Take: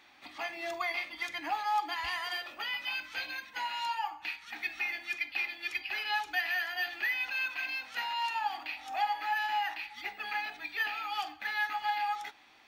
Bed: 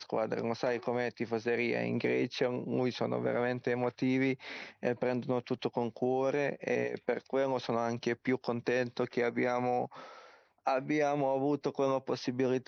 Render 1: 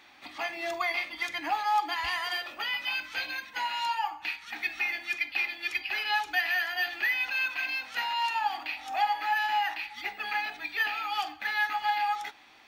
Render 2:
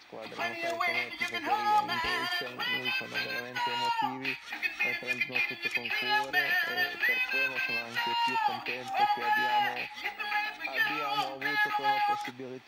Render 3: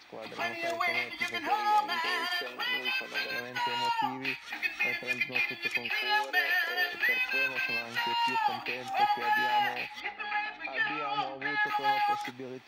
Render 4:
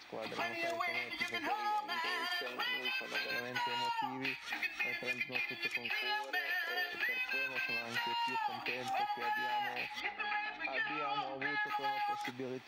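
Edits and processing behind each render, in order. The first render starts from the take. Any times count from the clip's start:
level +4 dB
mix in bed −11.5 dB
0:01.47–0:03.31: high-pass filter 290 Hz; 0:05.89–0:06.93: high-pass filter 320 Hz 24 dB per octave; 0:10.00–0:11.67: high-frequency loss of the air 180 metres
downward compressor, threshold −34 dBFS, peak gain reduction 12.5 dB

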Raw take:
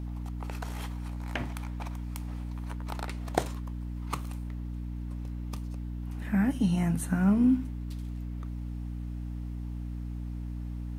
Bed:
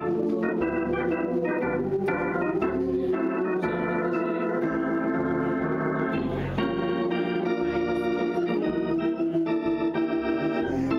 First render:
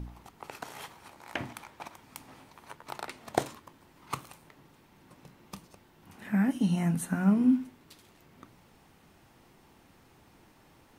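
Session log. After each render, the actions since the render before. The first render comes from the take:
hum removal 60 Hz, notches 5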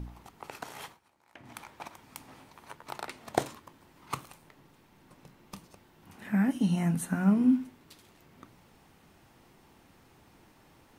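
0:00.87–0:01.56: duck −17.5 dB, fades 0.13 s
0:04.25–0:05.55: gain on one half-wave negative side −3 dB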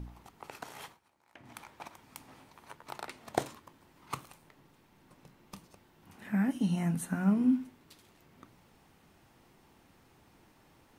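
level −3 dB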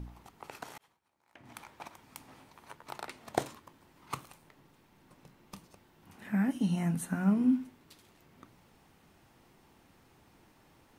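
0:00.78–0:01.49: fade in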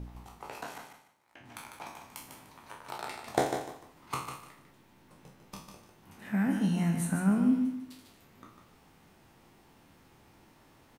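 peak hold with a decay on every bin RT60 0.48 s
repeating echo 149 ms, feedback 24%, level −7 dB

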